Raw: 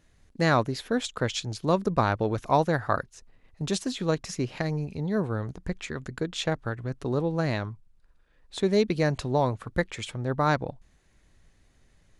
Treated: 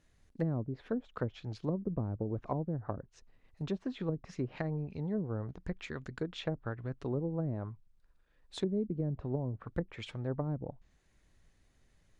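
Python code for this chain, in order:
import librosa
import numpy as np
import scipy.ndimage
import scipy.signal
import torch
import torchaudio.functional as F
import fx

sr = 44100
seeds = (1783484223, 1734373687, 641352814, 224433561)

y = fx.env_lowpass_down(x, sr, base_hz=300.0, full_db=-21.0)
y = y * 10.0 ** (-6.5 / 20.0)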